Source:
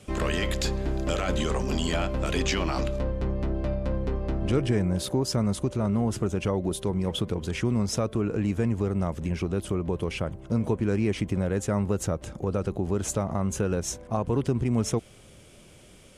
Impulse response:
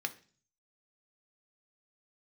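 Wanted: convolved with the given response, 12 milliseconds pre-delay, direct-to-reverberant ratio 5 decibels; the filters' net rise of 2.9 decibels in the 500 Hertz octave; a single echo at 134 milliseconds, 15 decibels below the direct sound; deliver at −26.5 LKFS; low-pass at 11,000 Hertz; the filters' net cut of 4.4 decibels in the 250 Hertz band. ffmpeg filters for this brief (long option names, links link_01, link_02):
-filter_complex "[0:a]lowpass=11000,equalizer=frequency=250:width_type=o:gain=-8,equalizer=frequency=500:width_type=o:gain=6,aecho=1:1:134:0.178,asplit=2[link_01][link_02];[1:a]atrim=start_sample=2205,adelay=12[link_03];[link_02][link_03]afir=irnorm=-1:irlink=0,volume=-7.5dB[link_04];[link_01][link_04]amix=inputs=2:normalize=0,volume=1dB"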